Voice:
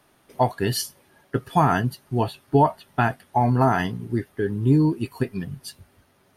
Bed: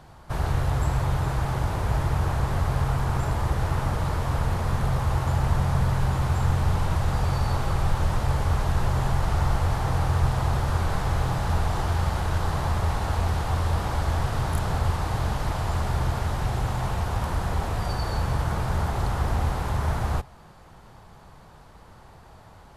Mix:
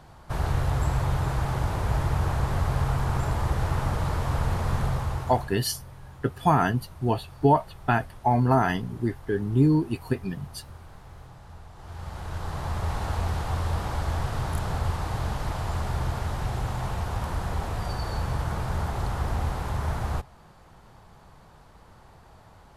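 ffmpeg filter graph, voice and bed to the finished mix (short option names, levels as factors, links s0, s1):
-filter_complex "[0:a]adelay=4900,volume=0.794[s0];[1:a]volume=7.5,afade=t=out:st=4.79:d=0.78:silence=0.0944061,afade=t=in:st=11.76:d=1.25:silence=0.11885[s1];[s0][s1]amix=inputs=2:normalize=0"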